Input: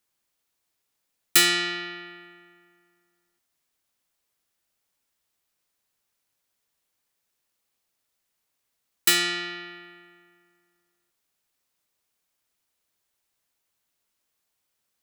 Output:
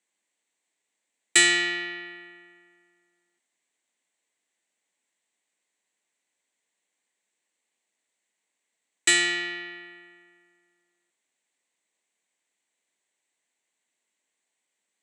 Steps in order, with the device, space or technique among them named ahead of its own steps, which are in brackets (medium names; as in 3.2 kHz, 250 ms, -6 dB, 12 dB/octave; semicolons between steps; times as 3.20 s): television speaker (cabinet simulation 200–8000 Hz, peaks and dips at 1.3 kHz -8 dB, 2 kHz +7 dB, 5.1 kHz -10 dB, 7.9 kHz +9 dB)